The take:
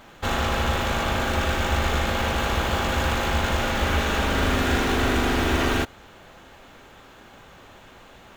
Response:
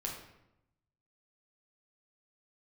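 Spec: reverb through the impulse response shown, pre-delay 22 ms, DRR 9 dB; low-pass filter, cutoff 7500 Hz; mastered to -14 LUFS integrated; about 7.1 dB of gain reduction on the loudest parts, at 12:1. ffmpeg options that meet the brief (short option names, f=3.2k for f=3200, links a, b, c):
-filter_complex "[0:a]lowpass=7.5k,acompressor=threshold=-25dB:ratio=12,asplit=2[a][b];[1:a]atrim=start_sample=2205,adelay=22[c];[b][c]afir=irnorm=-1:irlink=0,volume=-10dB[d];[a][d]amix=inputs=2:normalize=0,volume=15.5dB"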